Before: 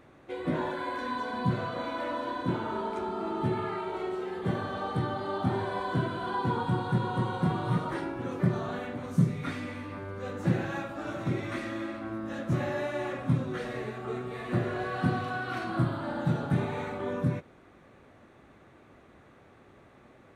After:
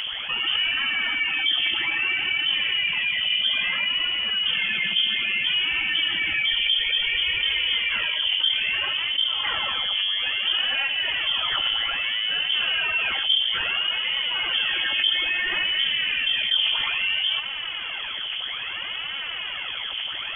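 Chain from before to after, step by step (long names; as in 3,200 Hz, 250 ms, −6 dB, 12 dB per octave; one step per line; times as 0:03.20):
phase shifter 0.6 Hz, delay 3.7 ms, feedback 64%
voice inversion scrambler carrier 3,300 Hz
envelope flattener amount 70%
level −6 dB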